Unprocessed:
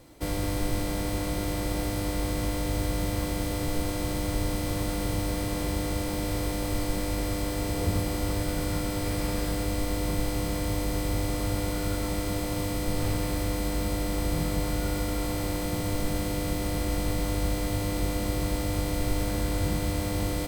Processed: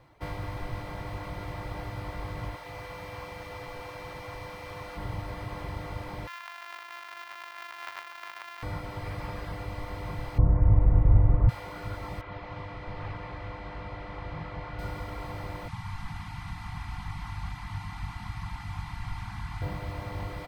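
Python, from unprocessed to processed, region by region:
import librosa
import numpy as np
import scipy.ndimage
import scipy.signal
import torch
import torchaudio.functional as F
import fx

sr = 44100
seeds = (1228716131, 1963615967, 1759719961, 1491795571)

y = fx.chain(x, sr, fx.low_shelf(hz=330.0, db=-10.0),
    fx.echo_crushed(ms=94, feedback_pct=80, bits=10, wet_db=-10.5), at=(2.56, 4.97))
y = fx.chain(y, sr, fx.sample_sort(block=128),
    fx.highpass(hz=1300.0, slope=12),
    fx.high_shelf(hz=11000.0, db=4.0), at=(6.27, 8.63))
y = fx.chain(y, sr, fx.lowpass(hz=2000.0, slope=12),
    fx.tilt_eq(slope=-4.5), at=(10.38, 11.49))
y = fx.chain(y, sr, fx.lowpass(hz=3600.0, slope=12),
    fx.low_shelf(hz=450.0, db=-4.0), at=(12.21, 14.79))
y = fx.chain(y, sr, fx.cvsd(bps=64000),
    fx.cheby1_bandstop(low_hz=280.0, high_hz=740.0, order=5), at=(15.68, 19.62))
y = fx.dereverb_blind(y, sr, rt60_s=0.81)
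y = fx.graphic_eq_10(y, sr, hz=(125, 250, 1000, 2000, 8000, 16000), db=(8, -7, 9, 5, -9, -12))
y = F.gain(torch.from_numpy(y), -7.0).numpy()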